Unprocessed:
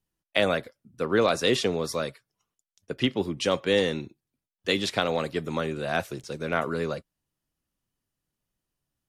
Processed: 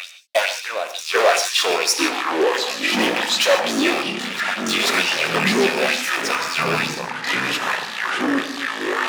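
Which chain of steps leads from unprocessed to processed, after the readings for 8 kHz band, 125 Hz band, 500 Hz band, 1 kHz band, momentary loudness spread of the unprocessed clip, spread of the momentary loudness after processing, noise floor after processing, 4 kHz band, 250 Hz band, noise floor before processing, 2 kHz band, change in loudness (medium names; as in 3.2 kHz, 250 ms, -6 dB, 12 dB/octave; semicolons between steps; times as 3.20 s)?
+16.5 dB, 0.0 dB, +5.5 dB, +11.5 dB, 11 LU, 7 LU, -32 dBFS, +11.5 dB, +6.5 dB, under -85 dBFS, +13.5 dB, +8.0 dB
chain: rattle on loud lows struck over -35 dBFS, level -19 dBFS; hum notches 50/100/150/200/250 Hz; dynamic bell 360 Hz, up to +3 dB, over -39 dBFS, Q 2.7; compression 2:1, threshold -33 dBFS, peak gain reduction 9.5 dB; reverse echo 488 ms -15 dB; waveshaping leveller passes 5; LFO high-pass sine 2.2 Hz 590–6300 Hz; gated-style reverb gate 170 ms flat, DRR 7.5 dB; ever faster or slower copies 645 ms, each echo -6 st, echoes 3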